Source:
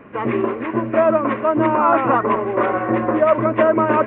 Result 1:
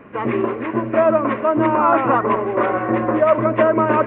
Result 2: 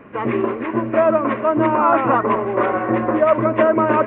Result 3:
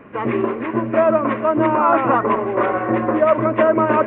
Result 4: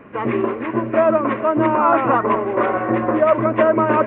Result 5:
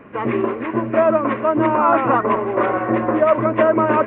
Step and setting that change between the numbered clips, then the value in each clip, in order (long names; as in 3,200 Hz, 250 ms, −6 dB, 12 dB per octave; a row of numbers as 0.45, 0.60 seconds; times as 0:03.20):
delay with a low-pass on its return, delay time: 76, 241, 140, 422, 626 milliseconds